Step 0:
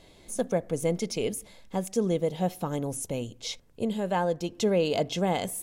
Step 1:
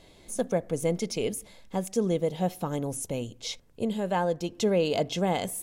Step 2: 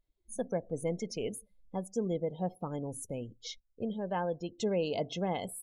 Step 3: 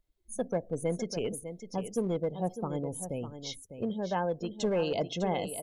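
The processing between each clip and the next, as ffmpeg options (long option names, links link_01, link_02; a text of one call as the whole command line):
ffmpeg -i in.wav -af anull out.wav
ffmpeg -i in.wav -af "afftdn=noise_reduction=32:noise_floor=-39,volume=-6.5dB" out.wav
ffmpeg -i in.wav -filter_complex "[0:a]aecho=1:1:602:0.299,acrossover=split=510[link_01][link_02];[link_01]aeval=exprs='clip(val(0),-1,0.02)':channel_layout=same[link_03];[link_03][link_02]amix=inputs=2:normalize=0,volume=2.5dB" out.wav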